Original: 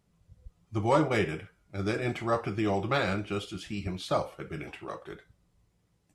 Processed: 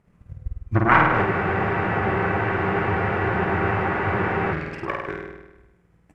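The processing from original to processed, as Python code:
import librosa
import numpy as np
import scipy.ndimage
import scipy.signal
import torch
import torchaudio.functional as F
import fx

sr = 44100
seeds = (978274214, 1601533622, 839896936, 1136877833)

p1 = fx.self_delay(x, sr, depth_ms=0.78)
p2 = fx.transient(p1, sr, attack_db=11, sustain_db=-1)
p3 = fx.env_lowpass_down(p2, sr, base_hz=1800.0, full_db=-23.0)
p4 = p3 + fx.room_flutter(p3, sr, wall_m=8.7, rt60_s=1.0, dry=0)
p5 = fx.dynamic_eq(p4, sr, hz=370.0, q=0.85, threshold_db=-36.0, ratio=4.0, max_db=-6)
p6 = np.clip(10.0 ** (24.5 / 20.0) * p5, -1.0, 1.0) / 10.0 ** (24.5 / 20.0)
p7 = p5 + (p6 * 10.0 ** (-10.5 / 20.0))
p8 = fx.high_shelf_res(p7, sr, hz=2800.0, db=-10.5, q=1.5)
p9 = fx.spec_freeze(p8, sr, seeds[0], at_s=1.27, hold_s=3.24)
y = p9 * 10.0 ** (4.0 / 20.0)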